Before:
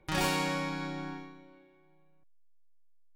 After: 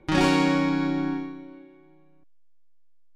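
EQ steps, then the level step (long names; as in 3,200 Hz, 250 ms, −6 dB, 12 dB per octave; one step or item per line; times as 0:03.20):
high-frequency loss of the air 74 metres
parametric band 290 Hz +9.5 dB 0.74 octaves
parametric band 15,000 Hz +4 dB 0.32 octaves
+6.5 dB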